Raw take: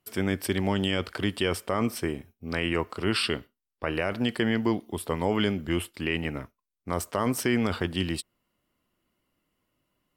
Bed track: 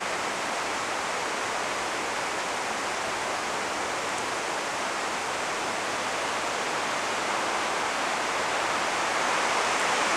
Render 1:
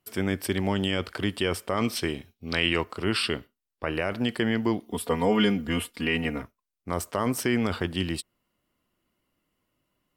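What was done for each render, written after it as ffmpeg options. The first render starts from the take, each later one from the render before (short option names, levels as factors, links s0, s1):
-filter_complex "[0:a]asettb=1/sr,asplit=3[s0][s1][s2];[s0]atrim=end=1.774[s3];[s1]atrim=start=1.77:end=2.84,asetpts=PTS-STARTPTS,afade=t=in:d=0.004:c=qsin,afade=t=out:st=1.066:d=0.004:c=qsin,equalizer=f=3800:t=o:w=1.2:g=12[s4];[s2]atrim=start=2.836[s5];[s3][s4]acrossfade=d=0.004:c1=hsin:c2=qsin[s6];[s6][s5]acrossfade=d=0.004:c1=qsin:c2=hsin,asettb=1/sr,asplit=3[s7][s8][s9];[s7]atrim=end=4.904[s10];[s8]atrim=start=4.9:end=6.42,asetpts=PTS-STARTPTS,afade=t=in:d=0.004:c=qsin,afade=t=out:st=1.516:d=0.004:c=qsin,aecho=1:1:4.2:0.96,atrim=end_sample=67032[s11];[s9]atrim=start=6.416[s12];[s10][s11]acrossfade=d=0.004:c1=hsin:c2=qsin[s13];[s13][s12]acrossfade=d=0.004:c1=qsin:c2=hsin"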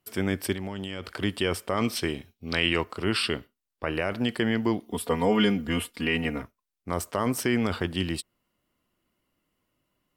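-filter_complex "[0:a]asplit=3[s0][s1][s2];[s0]afade=t=out:st=0.53:d=0.02[s3];[s1]acompressor=threshold=0.0355:ratio=6:attack=3.2:release=140:knee=1:detection=peak,afade=t=in:st=0.53:d=0.02,afade=t=out:st=1.2:d=0.02[s4];[s2]afade=t=in:st=1.2:d=0.02[s5];[s3][s4][s5]amix=inputs=3:normalize=0"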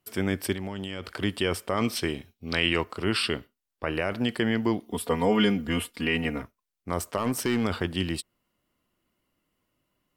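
-filter_complex "[0:a]asettb=1/sr,asplit=3[s0][s1][s2];[s0]atrim=end=7.174[s3];[s1]atrim=start=7.17:end=7.64,asetpts=PTS-STARTPTS,afade=t=in:d=0.004:c=qsin,afade=t=out:st=0.466:d=0.004:c=qsin,volume=8.91,asoftclip=hard,volume=0.112[s4];[s2]atrim=start=7.636[s5];[s3][s4]acrossfade=d=0.004:c1=hsin:c2=qsin[s6];[s6][s5]acrossfade=d=0.004:c1=qsin:c2=hsin"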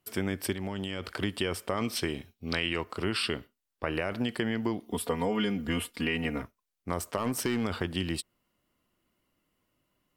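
-af "acompressor=threshold=0.0501:ratio=4"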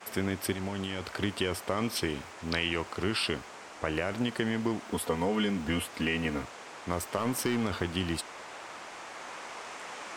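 -filter_complex "[1:a]volume=0.141[s0];[0:a][s0]amix=inputs=2:normalize=0"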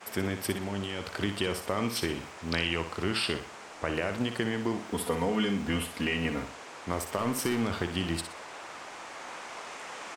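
-af "aecho=1:1:60|120|180|240:0.355|0.117|0.0386|0.0128"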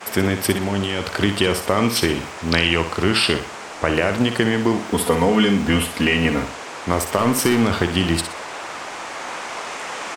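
-af "volume=3.98,alimiter=limit=0.891:level=0:latency=1"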